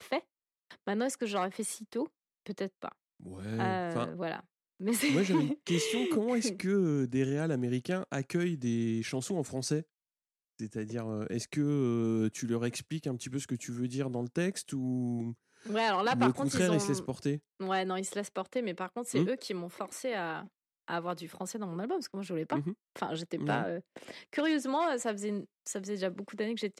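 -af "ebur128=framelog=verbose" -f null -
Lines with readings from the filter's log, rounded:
Integrated loudness:
  I:         -33.4 LUFS
  Threshold: -43.7 LUFS
Loudness range:
  LRA:         5.9 LU
  Threshold: -53.6 LUFS
  LRA low:   -36.9 LUFS
  LRA high:  -30.9 LUFS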